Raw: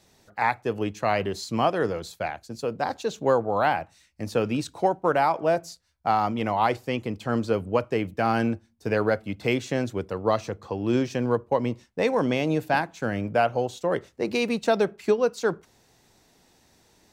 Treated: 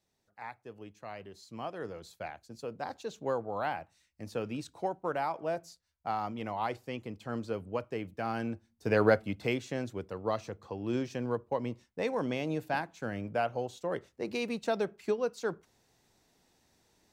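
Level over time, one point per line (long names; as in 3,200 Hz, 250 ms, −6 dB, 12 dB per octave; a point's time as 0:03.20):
0:01.31 −20 dB
0:02.20 −11 dB
0:08.44 −11 dB
0:09.09 0 dB
0:09.63 −9 dB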